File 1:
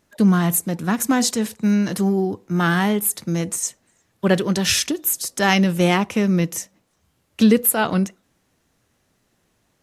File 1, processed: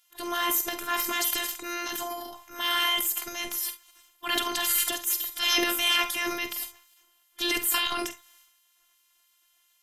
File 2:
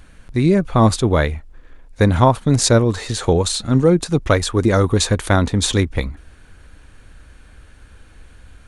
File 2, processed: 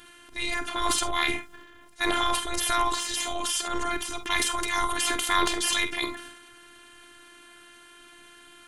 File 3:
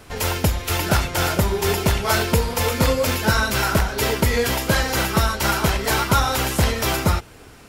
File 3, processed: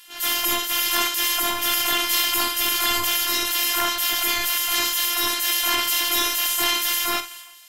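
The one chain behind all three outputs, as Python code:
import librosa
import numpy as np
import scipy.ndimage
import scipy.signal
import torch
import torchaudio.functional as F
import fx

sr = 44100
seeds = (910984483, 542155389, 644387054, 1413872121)

p1 = fx.spec_gate(x, sr, threshold_db=-15, keep='weak')
p2 = fx.graphic_eq_31(p1, sr, hz=(125, 400, 630, 3150, 12500), db=(-11, -7, -8, 7, 11))
p3 = fx.robotise(p2, sr, hz=346.0)
p4 = fx.transient(p3, sr, attack_db=-5, sustain_db=9)
p5 = p4 + fx.echo_multitap(p4, sr, ms=(48, 69), db=(-11.0, -17.0), dry=0)
y = F.gain(torch.from_numpy(p5), 4.0).numpy()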